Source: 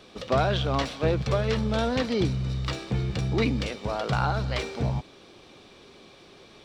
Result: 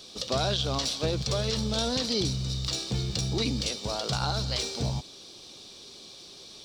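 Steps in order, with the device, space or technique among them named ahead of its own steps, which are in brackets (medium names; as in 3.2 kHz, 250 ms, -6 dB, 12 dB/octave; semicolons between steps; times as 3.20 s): over-bright horn tweeter (resonant high shelf 3.1 kHz +13.5 dB, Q 1.5; peak limiter -14 dBFS, peak gain reduction 7.5 dB); trim -3 dB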